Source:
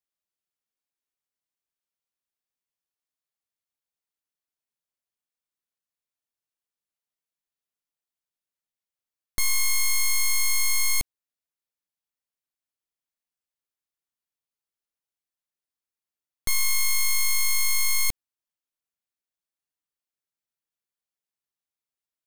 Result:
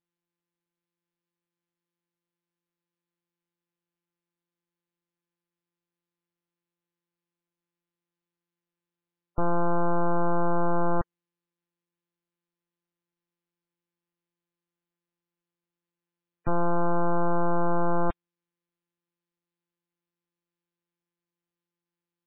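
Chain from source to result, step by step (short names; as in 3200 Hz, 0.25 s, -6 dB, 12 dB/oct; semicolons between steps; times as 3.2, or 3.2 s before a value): sample sorter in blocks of 256 samples; spectral gate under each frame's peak -25 dB strong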